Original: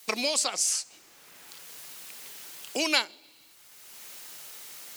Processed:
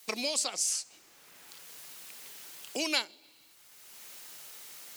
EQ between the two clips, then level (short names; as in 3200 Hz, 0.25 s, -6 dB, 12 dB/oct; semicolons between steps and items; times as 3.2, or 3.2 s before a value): dynamic EQ 1300 Hz, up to -4 dB, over -41 dBFS, Q 0.73; -3.5 dB